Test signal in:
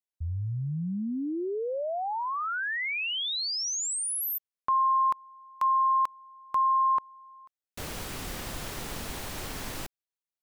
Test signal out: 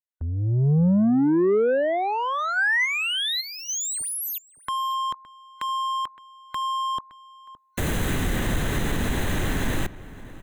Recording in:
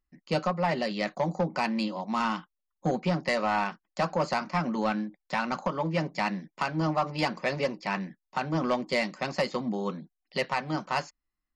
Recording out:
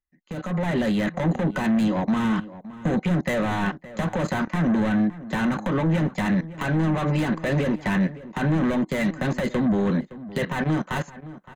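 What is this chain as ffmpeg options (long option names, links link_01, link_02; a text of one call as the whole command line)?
ffmpeg -i in.wav -filter_complex "[0:a]agate=range=-18dB:threshold=-41dB:ratio=16:release=21:detection=rms,asoftclip=type=tanh:threshold=-33dB,acrossover=split=390[link_01][link_02];[link_02]acompressor=threshold=-48dB:ratio=3:attack=0.43:release=46:knee=2.83:detection=peak[link_03];[link_01][link_03]amix=inputs=2:normalize=0,alimiter=level_in=11.5dB:limit=-24dB:level=0:latency=1:release=105,volume=-11.5dB,dynaudnorm=framelen=350:gausssize=3:maxgain=11dB,superequalizer=11b=1.78:14b=0.282,asplit=2[link_04][link_05];[link_05]adelay=565.6,volume=-16dB,highshelf=frequency=4000:gain=-12.7[link_06];[link_04][link_06]amix=inputs=2:normalize=0,adynamicequalizer=threshold=0.002:dfrequency=6200:dqfactor=0.7:tfrequency=6200:tqfactor=0.7:attack=5:release=100:ratio=0.375:range=2.5:mode=cutabove:tftype=highshelf,volume=9dB" out.wav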